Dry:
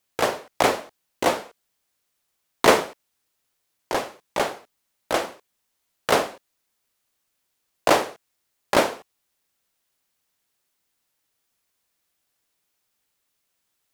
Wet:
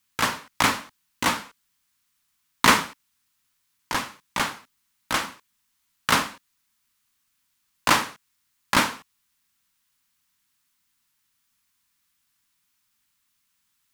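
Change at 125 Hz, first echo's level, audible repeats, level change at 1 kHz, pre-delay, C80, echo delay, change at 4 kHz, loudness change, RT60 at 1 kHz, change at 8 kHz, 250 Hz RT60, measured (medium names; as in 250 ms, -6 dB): +3.0 dB, no echo, no echo, -0.5 dB, no reverb, no reverb, no echo, +3.0 dB, -0.5 dB, no reverb, +3.0 dB, no reverb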